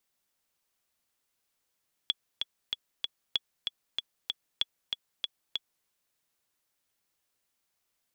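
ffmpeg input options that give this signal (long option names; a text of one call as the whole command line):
ffmpeg -f lavfi -i "aevalsrc='pow(10,(-13-4.5*gte(mod(t,4*60/191),60/191))/20)*sin(2*PI*3380*mod(t,60/191))*exp(-6.91*mod(t,60/191)/0.03)':duration=3.76:sample_rate=44100" out.wav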